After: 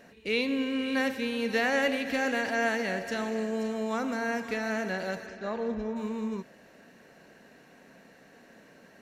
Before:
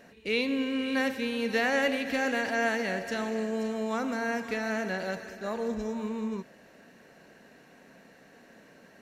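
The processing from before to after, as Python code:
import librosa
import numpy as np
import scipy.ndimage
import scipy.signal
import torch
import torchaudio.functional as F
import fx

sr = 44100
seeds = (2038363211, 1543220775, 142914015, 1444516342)

y = fx.lowpass(x, sr, hz=fx.line((5.26, 6100.0), (5.95, 2600.0)), slope=12, at=(5.26, 5.95), fade=0.02)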